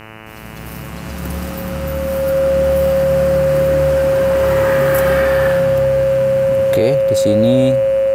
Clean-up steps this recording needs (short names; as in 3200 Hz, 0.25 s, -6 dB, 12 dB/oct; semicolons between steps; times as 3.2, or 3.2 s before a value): de-hum 109.6 Hz, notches 27; notch 540 Hz, Q 30